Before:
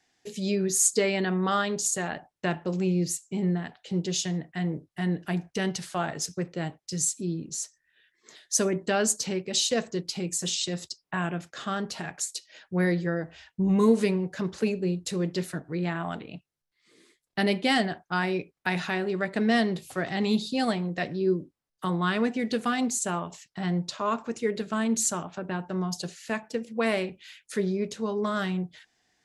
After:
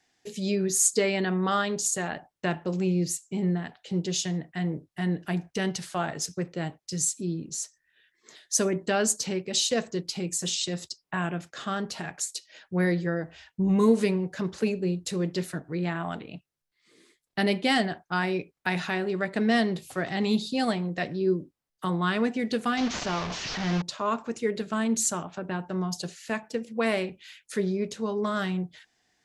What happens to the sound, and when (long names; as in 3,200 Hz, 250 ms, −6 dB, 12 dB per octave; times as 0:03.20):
0:22.77–0:23.82: linear delta modulator 32 kbit/s, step −26.5 dBFS